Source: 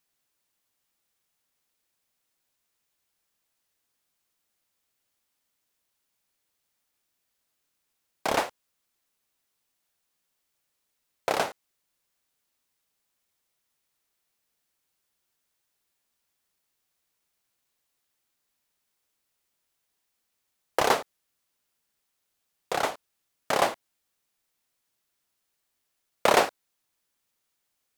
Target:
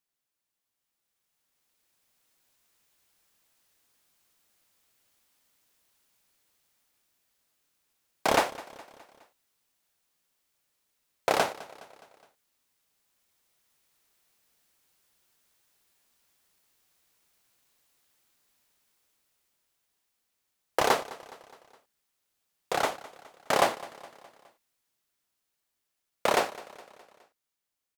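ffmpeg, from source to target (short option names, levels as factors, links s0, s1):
-filter_complex "[0:a]dynaudnorm=f=380:g=9:m=5.96,asplit=2[s0][s1];[s1]aecho=0:1:208|416|624|832:0.112|0.0595|0.0315|0.0167[s2];[s0][s2]amix=inputs=2:normalize=0,volume=0.398"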